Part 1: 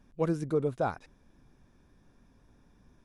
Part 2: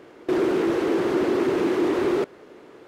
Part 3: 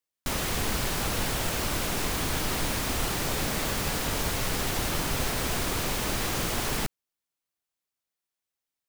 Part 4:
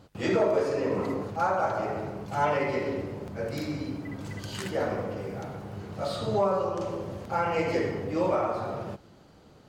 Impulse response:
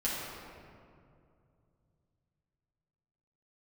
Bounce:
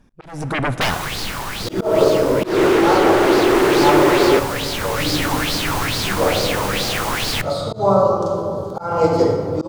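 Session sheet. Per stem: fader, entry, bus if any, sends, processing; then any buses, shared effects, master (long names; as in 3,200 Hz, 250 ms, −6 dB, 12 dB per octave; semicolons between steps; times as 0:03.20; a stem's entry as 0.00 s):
−12.5 dB, 0.00 s, send −20 dB, sine wavefolder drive 15 dB, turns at −17 dBFS
+2.0 dB, 2.15 s, no send, high-pass filter 510 Hz 6 dB per octave
−10.5 dB, 0.55 s, send −22 dB, auto-filter bell 2.3 Hz 900–4,700 Hz +15 dB; automatic ducking −7 dB, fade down 1.70 s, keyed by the first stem
−2.0 dB, 1.45 s, send −8.5 dB, flat-topped bell 2,200 Hz −15.5 dB 1 octave; expander for the loud parts 1.5 to 1, over −36 dBFS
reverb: on, RT60 2.4 s, pre-delay 6 ms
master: volume swells 199 ms; automatic gain control gain up to 13.5 dB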